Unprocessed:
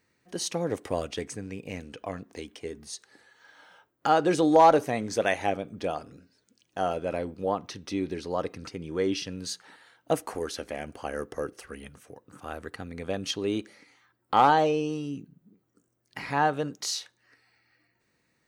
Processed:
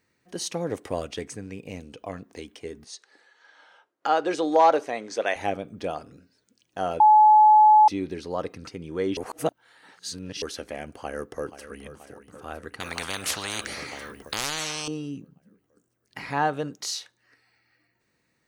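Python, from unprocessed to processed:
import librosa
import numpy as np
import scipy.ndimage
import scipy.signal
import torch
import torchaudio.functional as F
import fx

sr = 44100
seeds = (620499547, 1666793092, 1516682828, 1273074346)

y = fx.peak_eq(x, sr, hz=1700.0, db=-8.0, octaves=0.76, at=(1.69, 2.09))
y = fx.bandpass_edges(y, sr, low_hz=360.0, high_hz=6800.0, at=(2.84, 5.36))
y = fx.echo_throw(y, sr, start_s=10.98, length_s=0.84, ms=480, feedback_pct=70, wet_db=-13.0)
y = fx.spectral_comp(y, sr, ratio=10.0, at=(12.8, 14.88))
y = fx.edit(y, sr, fx.bleep(start_s=7.0, length_s=0.88, hz=855.0, db=-11.0),
    fx.reverse_span(start_s=9.17, length_s=1.25), tone=tone)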